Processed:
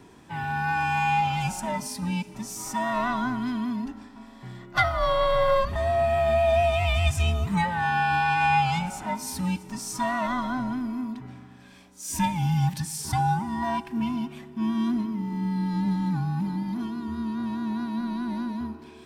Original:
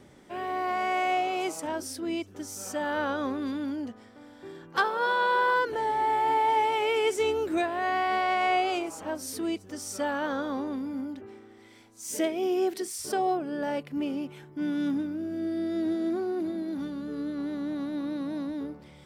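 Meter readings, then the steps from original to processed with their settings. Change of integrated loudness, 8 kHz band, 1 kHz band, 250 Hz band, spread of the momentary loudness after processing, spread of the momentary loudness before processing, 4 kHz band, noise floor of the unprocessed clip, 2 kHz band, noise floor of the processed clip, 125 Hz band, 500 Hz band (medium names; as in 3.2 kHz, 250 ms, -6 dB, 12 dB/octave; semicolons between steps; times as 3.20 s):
+3.0 dB, +3.0 dB, +1.5 dB, +2.5 dB, 11 LU, 11 LU, +2.5 dB, -52 dBFS, +2.5 dB, -48 dBFS, +21.0 dB, +1.5 dB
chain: every band turned upside down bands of 500 Hz; Schroeder reverb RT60 2.4 s, combs from 25 ms, DRR 16.5 dB; trim +3 dB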